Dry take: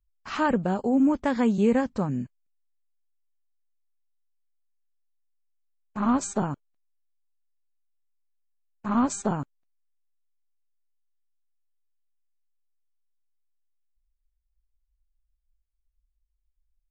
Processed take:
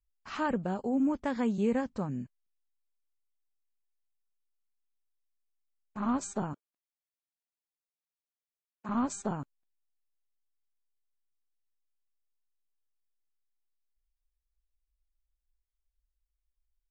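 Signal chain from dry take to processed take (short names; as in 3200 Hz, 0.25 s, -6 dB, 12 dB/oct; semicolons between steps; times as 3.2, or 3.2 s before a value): 6.53–8.89 HPF 210 Hz; gain -7 dB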